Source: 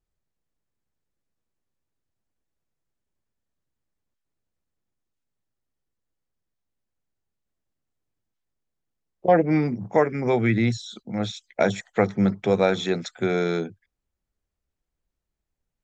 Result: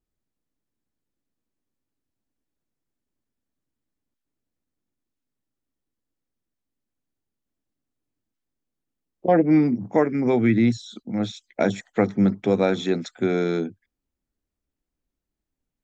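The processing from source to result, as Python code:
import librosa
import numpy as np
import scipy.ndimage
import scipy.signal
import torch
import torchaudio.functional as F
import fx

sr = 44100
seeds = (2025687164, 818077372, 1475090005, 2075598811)

y = fx.peak_eq(x, sr, hz=270.0, db=10.0, octaves=0.77)
y = F.gain(torch.from_numpy(y), -2.5).numpy()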